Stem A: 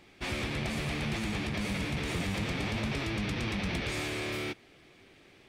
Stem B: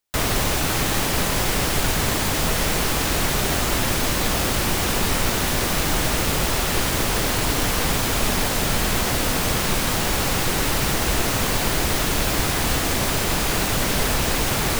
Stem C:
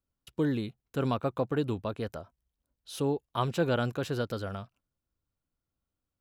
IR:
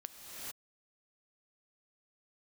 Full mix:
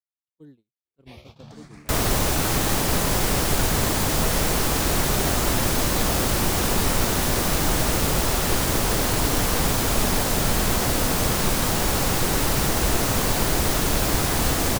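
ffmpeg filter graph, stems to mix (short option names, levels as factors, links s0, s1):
-filter_complex "[0:a]asplit=2[s0][s1];[s1]afreqshift=0.73[s2];[s0][s2]amix=inputs=2:normalize=1,adelay=850,volume=0.355,asplit=2[s3][s4];[s4]volume=0.447[s5];[1:a]adelay=1750,volume=1.06[s6];[2:a]acrossover=split=420|3000[s7][s8][s9];[s8]acompressor=threshold=0.00891:ratio=10[s10];[s7][s10][s9]amix=inputs=3:normalize=0,lowshelf=f=69:g=-10.5,volume=0.211[s11];[3:a]atrim=start_sample=2205[s12];[s5][s12]afir=irnorm=-1:irlink=0[s13];[s3][s6][s11][s13]amix=inputs=4:normalize=0,agate=range=0.0178:threshold=0.00794:ratio=16:detection=peak,equalizer=f=2500:w=0.77:g=-4.5"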